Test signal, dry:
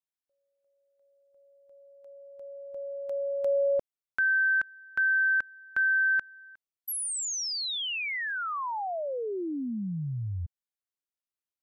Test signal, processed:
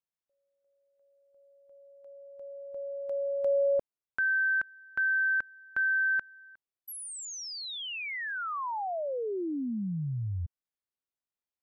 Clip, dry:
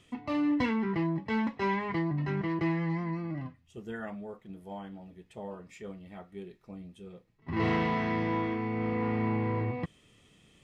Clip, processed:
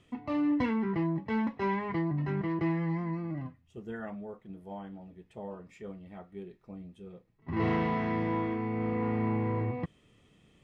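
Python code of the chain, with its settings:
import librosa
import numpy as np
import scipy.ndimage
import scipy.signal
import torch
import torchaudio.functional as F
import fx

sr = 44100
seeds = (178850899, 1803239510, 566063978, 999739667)

y = fx.high_shelf(x, sr, hz=2500.0, db=-9.0)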